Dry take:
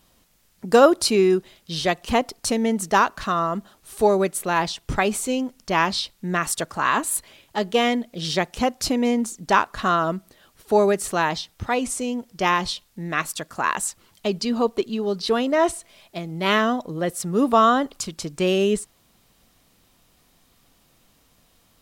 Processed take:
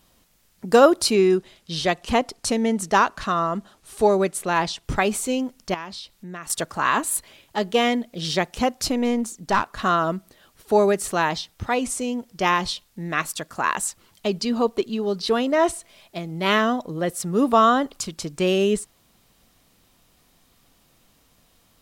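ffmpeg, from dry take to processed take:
-filter_complex "[0:a]asettb=1/sr,asplit=3[s0][s1][s2];[s0]atrim=end=1.144[s3];[s1]atrim=start=1.14:end=4.84,asetpts=PTS-STARTPTS,afade=t=in:d=0.004:c=qsin,afade=t=out:st=3.696:d=0.004:c=qsin,lowpass=11000[s4];[s2]atrim=start=4.836[s5];[s3][s4]acrossfade=d=0.004:c1=hsin:c2=qsin[s6];[s6][s5]acrossfade=d=0.004:c1=qsin:c2=hsin,asettb=1/sr,asplit=3[s7][s8][s9];[s7]atrim=end=5.744[s10];[s8]atrim=start=5.74:end=6.5,asetpts=PTS-STARTPTS,afade=t=in:d=0.004:c=qsin,afade=t=out:st=0.756:d=0.004:c=qsin,acompressor=threshold=0.00794:ratio=2:attack=3.2:release=140:knee=1:detection=peak[s11];[s9]atrim=start=6.496[s12];[s10][s11]acrossfade=d=0.004:c1=hsin:c2=qsin[s13];[s13][s12]acrossfade=d=0.004:c1=qsin:c2=hsin,asettb=1/sr,asplit=3[s14][s15][s16];[s14]atrim=end=8.874[s17];[s15]atrim=start=8.87:end=9.8,asetpts=PTS-STARTPTS,afade=t=in:d=0.004:c=qsin,afade=t=out:st=0.926:d=0.004:c=qsin,aeval=exprs='(tanh(2.82*val(0)+0.45)-tanh(0.45))/2.82':c=same[s18];[s16]atrim=start=9.796[s19];[s17][s18]acrossfade=d=0.004:c1=hsin:c2=qsin[s20];[s20][s19]acrossfade=d=0.004:c1=qsin:c2=hsin"

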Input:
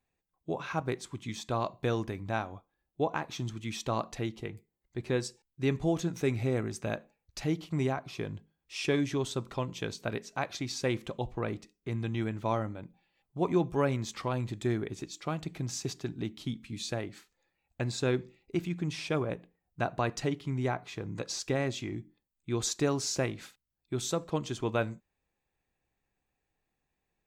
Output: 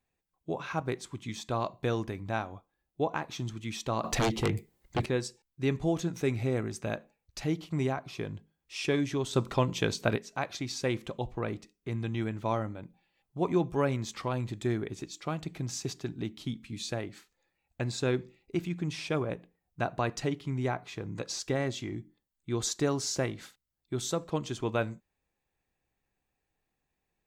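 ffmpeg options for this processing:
-filter_complex "[0:a]asettb=1/sr,asplit=3[s0][s1][s2];[s0]atrim=end=4.044[s3];[s1]atrim=start=4.04:end=5.06,asetpts=PTS-STARTPTS,afade=t=in:d=0.004:c=qsin,afade=t=out:st=1.016:d=0.004:c=qsin,aeval=exprs='0.075*sin(PI/2*3.55*val(0)/0.075)':c=same[s4];[s2]atrim=start=5.056[s5];[s3][s4]acrossfade=d=0.004:c1=hsin:c2=qsin[s6];[s6][s5]acrossfade=d=0.004:c1=qsin:c2=hsin,asettb=1/sr,asplit=3[s7][s8][s9];[s7]atrim=end=9.334[s10];[s8]atrim=start=9.33:end=10.16,asetpts=PTS-STARTPTS,afade=t=in:d=0.004:c=qsin,afade=t=out:st=0.826:d=0.004:c=qsin,acontrast=76[s11];[s9]atrim=start=10.156[s12];[s10][s11]acrossfade=d=0.004:c1=hsin:c2=qsin[s13];[s13][s12]acrossfade=d=0.004:c1=qsin:c2=hsin,asettb=1/sr,asplit=3[s14][s15][s16];[s14]atrim=end=21.424[s17];[s15]atrim=start=21.42:end=24.15,asetpts=PTS-STARTPTS,afade=t=in:d=0.004:c=qsin,afade=t=out:st=2.726:d=0.004:c=qsin,bandreject=f=2500:w=12[s18];[s16]atrim=start=24.146[s19];[s17][s18]acrossfade=d=0.004:c1=hsin:c2=qsin[s20];[s20][s19]acrossfade=d=0.004:c1=qsin:c2=hsin"

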